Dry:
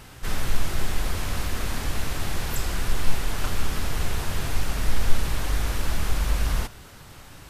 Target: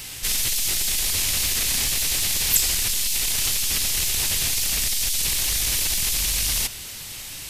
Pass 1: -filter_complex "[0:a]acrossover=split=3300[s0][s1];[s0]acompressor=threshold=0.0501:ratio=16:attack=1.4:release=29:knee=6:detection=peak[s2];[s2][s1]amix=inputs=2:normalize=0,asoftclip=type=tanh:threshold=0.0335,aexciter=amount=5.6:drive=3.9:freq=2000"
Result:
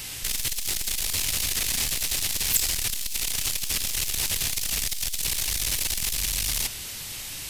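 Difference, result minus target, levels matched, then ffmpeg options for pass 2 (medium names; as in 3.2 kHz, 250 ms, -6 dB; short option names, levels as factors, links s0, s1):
saturation: distortion +16 dB
-filter_complex "[0:a]acrossover=split=3300[s0][s1];[s0]acompressor=threshold=0.0501:ratio=16:attack=1.4:release=29:knee=6:detection=peak[s2];[s2][s1]amix=inputs=2:normalize=0,asoftclip=type=tanh:threshold=0.119,aexciter=amount=5.6:drive=3.9:freq=2000"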